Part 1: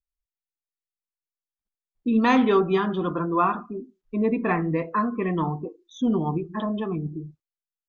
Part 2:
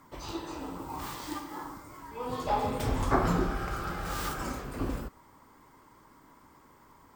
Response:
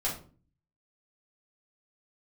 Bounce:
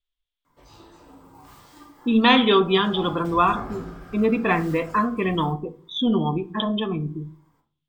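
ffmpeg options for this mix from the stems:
-filter_complex "[0:a]lowpass=f=3400:t=q:w=6.5,volume=1.12,asplit=2[s0][s1];[s1]volume=0.133[s2];[1:a]adelay=450,volume=0.168,asplit=2[s3][s4];[s4]volume=0.668[s5];[2:a]atrim=start_sample=2205[s6];[s2][s5]amix=inputs=2:normalize=0[s7];[s7][s6]afir=irnorm=-1:irlink=0[s8];[s0][s3][s8]amix=inputs=3:normalize=0"

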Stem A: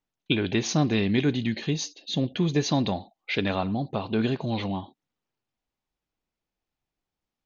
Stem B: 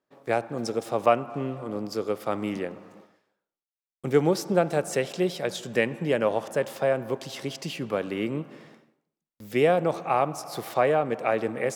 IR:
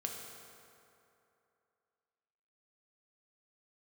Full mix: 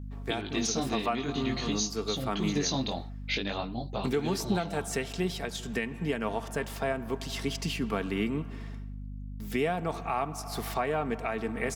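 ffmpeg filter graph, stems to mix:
-filter_complex "[0:a]bass=f=250:g=-4,treble=f=4000:g=12,flanger=delay=15.5:depth=7.9:speed=0.5,volume=0.944[s0];[1:a]equalizer=f=530:w=3.5:g=-12,aecho=1:1:4.4:0.42,aeval=exprs='val(0)+0.0112*(sin(2*PI*50*n/s)+sin(2*PI*2*50*n/s)/2+sin(2*PI*3*50*n/s)/3+sin(2*PI*4*50*n/s)/4+sin(2*PI*5*50*n/s)/5)':c=same,volume=1.12[s1];[s0][s1]amix=inputs=2:normalize=0,alimiter=limit=0.119:level=0:latency=1:release=446"

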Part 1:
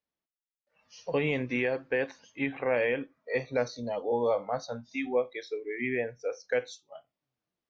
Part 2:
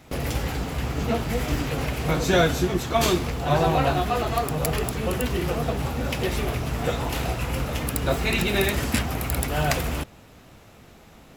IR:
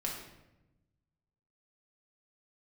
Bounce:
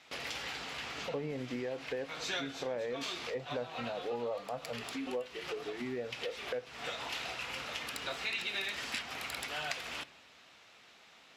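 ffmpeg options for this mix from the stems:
-filter_complex "[0:a]lowpass=1400,volume=0.794,asplit=2[s0][s1];[1:a]bandpass=f=4100:t=q:w=0.9:csg=0,volume=1.33,asplit=2[s2][s3];[s3]volume=0.126[s4];[s1]apad=whole_len=501175[s5];[s2][s5]sidechaincompress=threshold=0.00631:ratio=3:attack=16:release=258[s6];[2:a]atrim=start_sample=2205[s7];[s4][s7]afir=irnorm=-1:irlink=0[s8];[s0][s6][s8]amix=inputs=3:normalize=0,highshelf=f=5400:g=-12,acompressor=threshold=0.0141:ratio=2.5"

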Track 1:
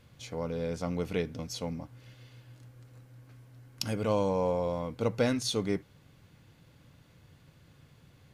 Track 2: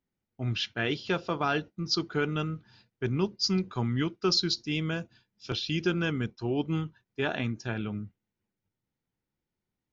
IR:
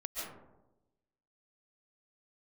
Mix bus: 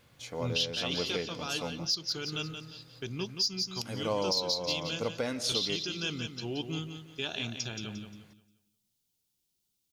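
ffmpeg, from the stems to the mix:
-filter_complex "[0:a]lowshelf=f=240:g=-10,volume=1.06,asplit=2[s0][s1];[s1]volume=0.168[s2];[1:a]alimiter=limit=0.0794:level=0:latency=1:release=446,aexciter=amount=4.3:drive=8.8:freq=2800,volume=0.562,asplit=2[s3][s4];[s4]volume=0.398[s5];[2:a]atrim=start_sample=2205[s6];[s2][s6]afir=irnorm=-1:irlink=0[s7];[s5]aecho=0:1:176|352|528|704|880:1|0.32|0.102|0.0328|0.0105[s8];[s0][s3][s7][s8]amix=inputs=4:normalize=0,alimiter=limit=0.106:level=0:latency=1:release=369"

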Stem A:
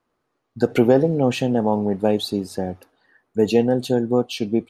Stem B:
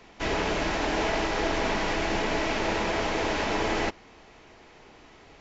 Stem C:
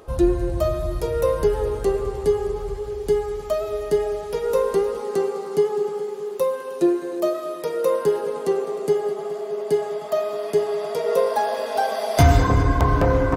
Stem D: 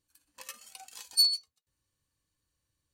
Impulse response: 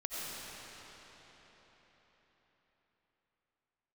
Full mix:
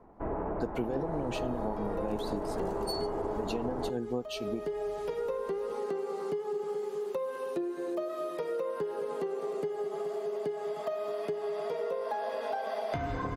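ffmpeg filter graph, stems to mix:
-filter_complex "[0:a]tremolo=f=6:d=0.62,volume=0.473,asplit=2[s0][s1];[1:a]lowpass=f=1100:w=0.5412,lowpass=f=1100:w=1.3066,volume=0.75[s2];[2:a]acrossover=split=3500[s3][s4];[s4]acompressor=threshold=0.00251:ratio=4:attack=1:release=60[s5];[s3][s5]amix=inputs=2:normalize=0,equalizer=f=67:w=1.2:g=-13,acompressor=threshold=0.0501:ratio=2.5,adelay=750,volume=0.668[s6];[3:a]adelay=1700,volume=0.282[s7];[s1]apad=whole_len=622348[s8];[s6][s8]sidechaincompress=threshold=0.0398:ratio=8:attack=25:release=588[s9];[s0][s2][s9][s7]amix=inputs=4:normalize=0,acompressor=threshold=0.0282:ratio=3"

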